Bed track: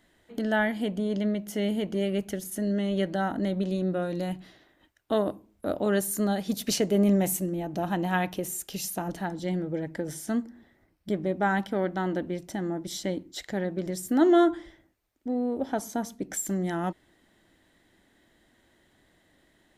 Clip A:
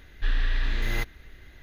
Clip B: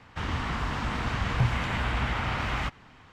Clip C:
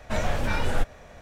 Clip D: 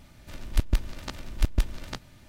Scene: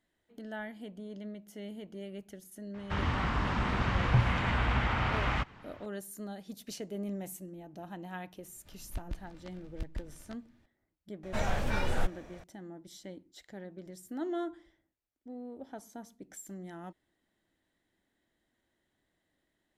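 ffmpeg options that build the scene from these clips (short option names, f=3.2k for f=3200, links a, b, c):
-filter_complex "[0:a]volume=-15.5dB[a];[2:a]lowpass=f=3.5k:p=1[b];[4:a]lowpass=f=3.5k:p=1[c];[b]atrim=end=3.12,asetpts=PTS-STARTPTS,volume=-0.5dB,afade=t=in:d=0.004:c=hsin,afade=t=out:st=3.116:d=0.004:c=hsin,adelay=2740[d];[c]atrim=end=2.28,asetpts=PTS-STARTPTS,volume=-15.5dB,afade=t=in:d=0.004:c=hsin,afade=t=out:st=2.276:d=0.004:c=hsin,adelay=8380[e];[3:a]atrim=end=1.21,asetpts=PTS-STARTPTS,volume=-5.5dB,afade=t=in:d=0.004:c=hsin,afade=t=out:st=1.206:d=0.004:c=hsin,adelay=11230[f];[a][d][e][f]amix=inputs=4:normalize=0"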